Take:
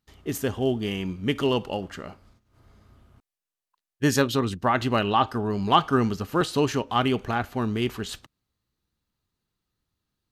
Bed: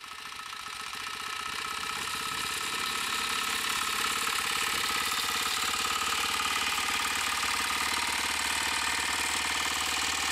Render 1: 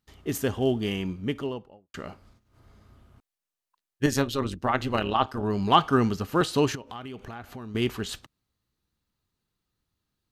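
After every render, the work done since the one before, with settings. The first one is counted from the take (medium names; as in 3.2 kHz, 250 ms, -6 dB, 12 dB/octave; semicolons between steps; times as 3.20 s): 0.88–1.94 s: studio fade out; 4.06–5.43 s: AM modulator 140 Hz, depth 60%; 6.75–7.75 s: compression 5:1, threshold -37 dBFS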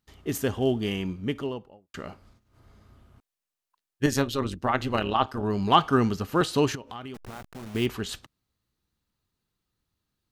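7.14–7.86 s: send-on-delta sampling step -38 dBFS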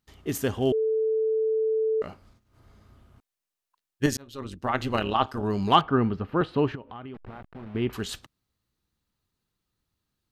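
0.72–2.02 s: bleep 440 Hz -21.5 dBFS; 4.17–4.83 s: fade in; 5.81–7.93 s: distance through air 450 m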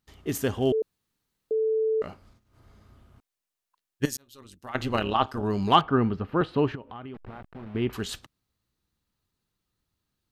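0.82–1.51 s: room tone; 4.05–4.75 s: pre-emphasis filter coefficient 0.8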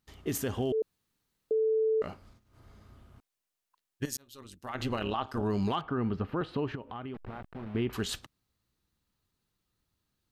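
compression 4:1, threshold -25 dBFS, peak gain reduction 10.5 dB; peak limiter -22 dBFS, peak gain reduction 8.5 dB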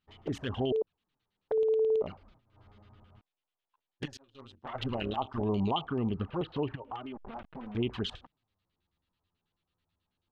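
LFO low-pass square 9.2 Hz 890–3200 Hz; touch-sensitive flanger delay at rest 11.8 ms, full sweep at -25.5 dBFS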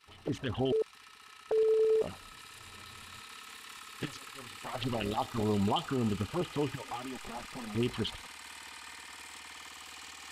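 add bed -18 dB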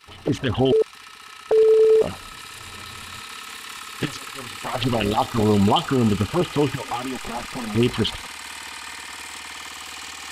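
trim +12 dB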